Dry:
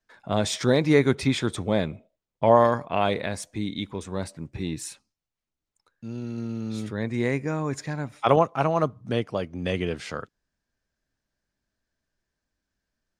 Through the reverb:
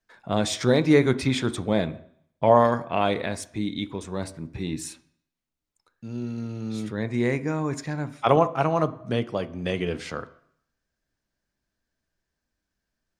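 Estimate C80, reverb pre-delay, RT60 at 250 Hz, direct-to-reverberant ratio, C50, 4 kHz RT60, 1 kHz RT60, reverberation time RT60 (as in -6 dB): 20.0 dB, 3 ms, 0.65 s, 12.0 dB, 17.0 dB, 0.70 s, 0.70 s, 0.65 s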